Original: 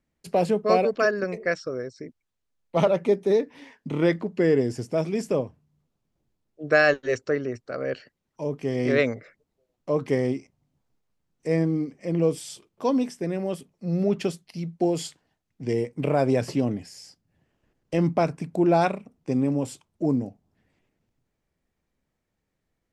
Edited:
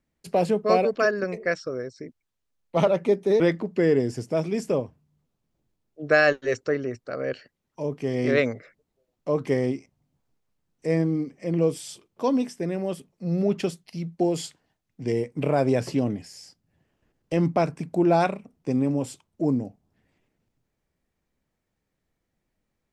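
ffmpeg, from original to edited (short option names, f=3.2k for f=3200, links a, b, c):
-filter_complex "[0:a]asplit=2[a][b];[a]atrim=end=3.402[c];[b]atrim=start=4.008[d];[c][d]acrossfade=d=0.004:c1=hsin:c2=hsin"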